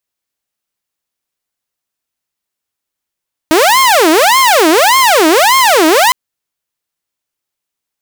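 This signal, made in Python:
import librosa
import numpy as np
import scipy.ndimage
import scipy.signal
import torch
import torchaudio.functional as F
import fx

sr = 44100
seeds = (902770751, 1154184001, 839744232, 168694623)

y = fx.siren(sr, length_s=2.61, kind='wail', low_hz=310.0, high_hz=1070.0, per_s=1.7, wave='saw', level_db=-3.0)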